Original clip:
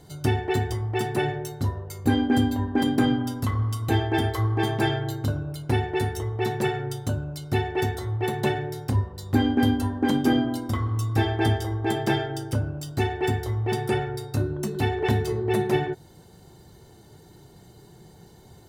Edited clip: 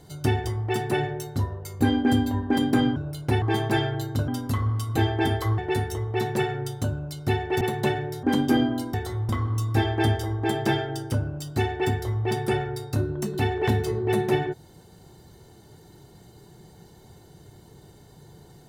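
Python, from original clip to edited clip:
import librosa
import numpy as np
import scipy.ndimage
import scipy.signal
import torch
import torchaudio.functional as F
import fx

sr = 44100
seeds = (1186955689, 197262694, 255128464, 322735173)

y = fx.edit(x, sr, fx.cut(start_s=0.44, length_s=0.25),
    fx.swap(start_s=3.21, length_s=1.3, other_s=5.37, other_length_s=0.46),
    fx.move(start_s=7.86, length_s=0.35, to_s=10.7),
    fx.cut(start_s=8.83, length_s=1.16), tone=tone)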